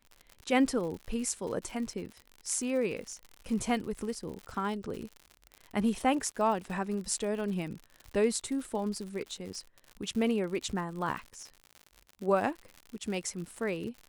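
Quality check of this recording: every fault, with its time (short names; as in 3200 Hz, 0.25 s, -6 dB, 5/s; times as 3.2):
crackle 88/s -38 dBFS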